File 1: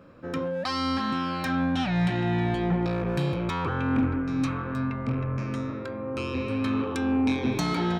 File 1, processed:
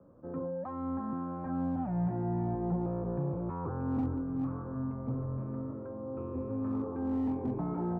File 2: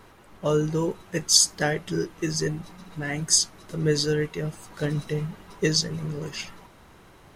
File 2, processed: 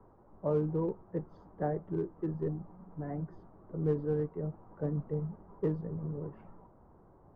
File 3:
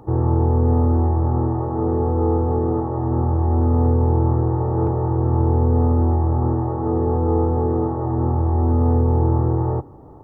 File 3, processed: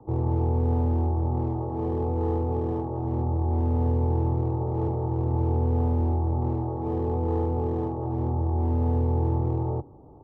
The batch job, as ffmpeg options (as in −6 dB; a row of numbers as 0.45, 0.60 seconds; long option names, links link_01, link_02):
-filter_complex "[0:a]lowpass=frequency=1000:width=0.5412,lowpass=frequency=1000:width=1.3066,acrossover=split=190|390|600[link_01][link_02][link_03][link_04];[link_02]volume=27dB,asoftclip=hard,volume=-27dB[link_05];[link_01][link_05][link_03][link_04]amix=inputs=4:normalize=0,volume=-6.5dB"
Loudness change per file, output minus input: −7.5, −11.0, −7.0 LU